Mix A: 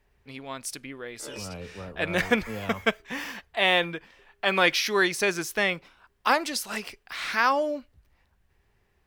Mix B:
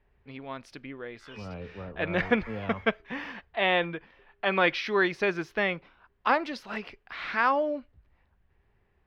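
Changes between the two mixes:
background: add high-pass 1.2 kHz 24 dB/octave; master: add distance through air 310 m

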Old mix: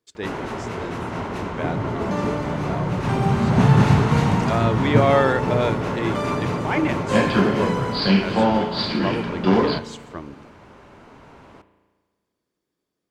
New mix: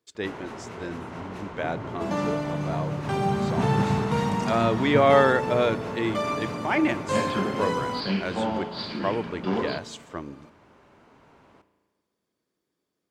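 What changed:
first sound -9.0 dB; master: add bass shelf 71 Hz -7.5 dB

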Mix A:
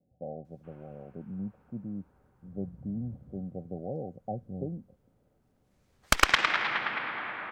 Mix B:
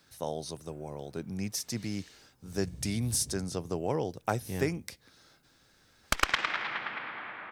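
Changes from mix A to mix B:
speech: remove rippled Chebyshev low-pass 780 Hz, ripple 9 dB; background -5.0 dB

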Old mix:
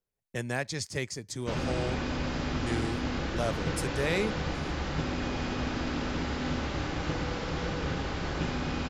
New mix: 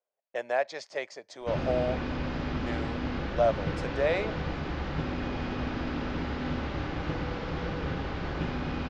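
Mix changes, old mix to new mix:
speech: add resonant high-pass 620 Hz, resonance Q 3.9; master: add distance through air 180 m

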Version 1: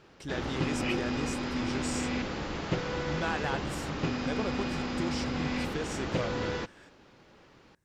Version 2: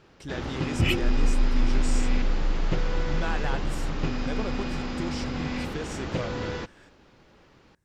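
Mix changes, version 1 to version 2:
second sound: remove band-pass filter 770 Hz, Q 0.77; master: add bass shelf 100 Hz +6 dB

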